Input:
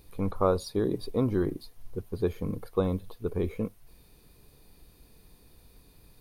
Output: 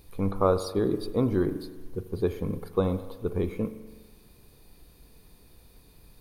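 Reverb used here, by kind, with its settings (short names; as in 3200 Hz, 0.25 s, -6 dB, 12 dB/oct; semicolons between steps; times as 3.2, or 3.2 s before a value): spring tank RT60 1.3 s, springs 41 ms, chirp 60 ms, DRR 11 dB; gain +1.5 dB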